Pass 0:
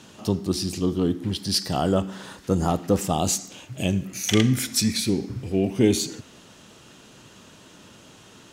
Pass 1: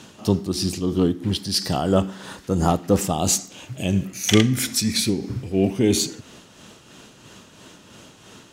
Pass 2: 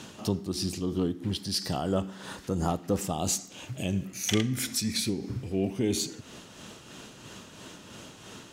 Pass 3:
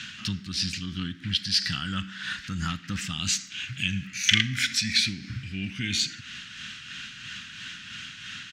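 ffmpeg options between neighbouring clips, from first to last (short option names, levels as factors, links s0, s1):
-af "tremolo=f=3:d=0.47,volume=1.68"
-af "acompressor=threshold=0.01:ratio=1.5"
-af "firequalizer=gain_entry='entry(150,0);entry(240,-4);entry(420,-26);entry(700,-24);entry(1500,13);entry(2700,13);entry(11000,-11)':delay=0.05:min_phase=1"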